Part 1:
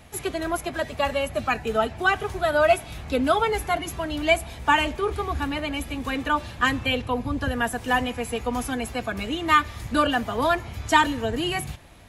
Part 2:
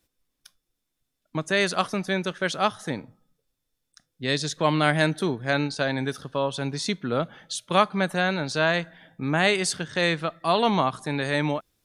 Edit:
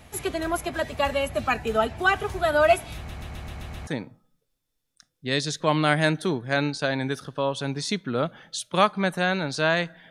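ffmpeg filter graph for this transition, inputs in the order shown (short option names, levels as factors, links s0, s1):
-filter_complex "[0:a]apad=whole_dur=10.1,atrim=end=10.1,asplit=7[s0][s1][s2][s3][s4][s5][s6];[s0]atrim=end=3.092[s7];[s1]atrim=start=2.958:end=3.092[s8];[s2]atrim=start=2.958:end=3.092[s9];[s3]atrim=start=2.958:end=3.092[s10];[s4]atrim=start=2.958:end=3.092[s11];[s5]atrim=start=2.958:end=3.092[s12];[s6]atrim=start=2.958:end=3.092[s13];[1:a]atrim=start=2.838:end=9.07[s14];[s7][s8]acrossfade=d=0.004:c1=hsin:c2=hsin[s15];[s15][s9]acrossfade=d=0.004:c1=hsin:c2=hsin[s16];[s16][s10]acrossfade=d=0.004:c1=hsin:c2=hsin[s17];[s17][s11]acrossfade=d=0.004:c1=hsin:c2=hsin[s18];[s18][s12]acrossfade=d=0.004:c1=hsin:c2=hsin[s19];[s19][s13]acrossfade=d=0.004:c1=hsin:c2=hsin[s20];[s20][s14]acrossfade=d=0.004:c1=hsin:c2=hsin"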